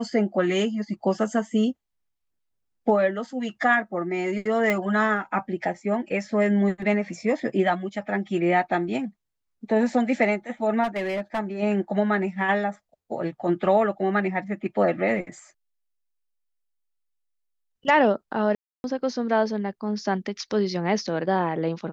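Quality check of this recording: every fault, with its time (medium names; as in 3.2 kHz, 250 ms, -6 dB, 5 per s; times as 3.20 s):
4.70 s: pop -11 dBFS
10.83–11.40 s: clipped -22.5 dBFS
18.55–18.84 s: dropout 291 ms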